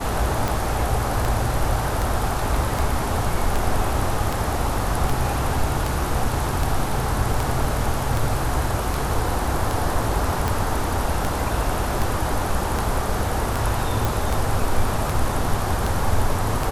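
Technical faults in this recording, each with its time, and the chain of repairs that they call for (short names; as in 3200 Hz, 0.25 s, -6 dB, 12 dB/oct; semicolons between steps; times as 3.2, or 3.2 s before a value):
tick 78 rpm
14.05 pop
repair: de-click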